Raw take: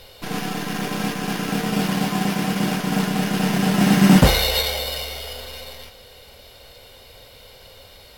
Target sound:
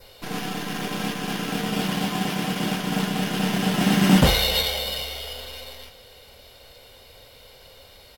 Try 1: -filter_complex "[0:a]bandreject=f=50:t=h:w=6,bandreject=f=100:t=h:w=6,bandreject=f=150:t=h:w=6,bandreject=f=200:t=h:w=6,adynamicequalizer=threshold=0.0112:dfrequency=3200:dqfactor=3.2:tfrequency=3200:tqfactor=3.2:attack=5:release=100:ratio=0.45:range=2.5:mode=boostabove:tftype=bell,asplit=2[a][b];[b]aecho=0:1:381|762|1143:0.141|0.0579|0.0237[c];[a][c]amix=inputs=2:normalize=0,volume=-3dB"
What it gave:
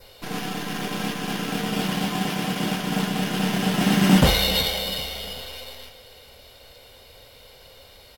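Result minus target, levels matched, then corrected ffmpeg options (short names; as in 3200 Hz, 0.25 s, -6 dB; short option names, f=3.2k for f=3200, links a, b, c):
echo-to-direct +10 dB
-filter_complex "[0:a]bandreject=f=50:t=h:w=6,bandreject=f=100:t=h:w=6,bandreject=f=150:t=h:w=6,bandreject=f=200:t=h:w=6,adynamicequalizer=threshold=0.0112:dfrequency=3200:dqfactor=3.2:tfrequency=3200:tqfactor=3.2:attack=5:release=100:ratio=0.45:range=2.5:mode=boostabove:tftype=bell,asplit=2[a][b];[b]aecho=0:1:381|762:0.0447|0.0183[c];[a][c]amix=inputs=2:normalize=0,volume=-3dB"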